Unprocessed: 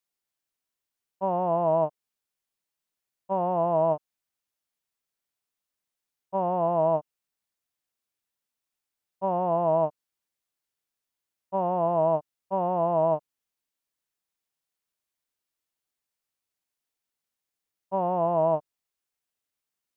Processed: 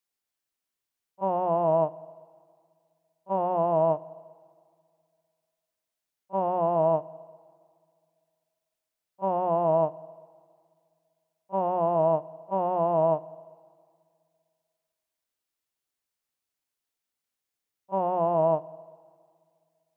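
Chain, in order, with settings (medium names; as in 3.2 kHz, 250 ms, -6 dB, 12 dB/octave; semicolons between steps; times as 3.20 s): hum notches 60/120/180 Hz; pre-echo 32 ms -19 dB; on a send at -20.5 dB: reverberation RT60 2.1 s, pre-delay 49 ms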